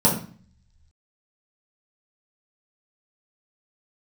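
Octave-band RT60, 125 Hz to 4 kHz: 1.1 s, 0.70 s, 0.40 s, 0.45 s, 0.45 s, 0.40 s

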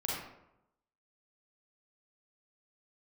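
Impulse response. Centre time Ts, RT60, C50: 69 ms, 0.85 s, -1.5 dB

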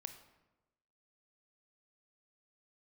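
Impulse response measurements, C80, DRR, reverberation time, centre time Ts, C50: 12.0 dB, 8.0 dB, 1.1 s, 13 ms, 10.0 dB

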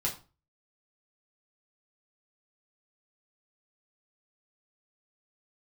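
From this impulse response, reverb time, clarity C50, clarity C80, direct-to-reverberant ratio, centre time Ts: 0.35 s, 11.0 dB, 16.5 dB, -3.0 dB, 19 ms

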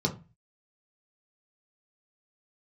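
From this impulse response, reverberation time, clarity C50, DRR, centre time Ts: 0.30 s, 14.0 dB, 0.0 dB, 10 ms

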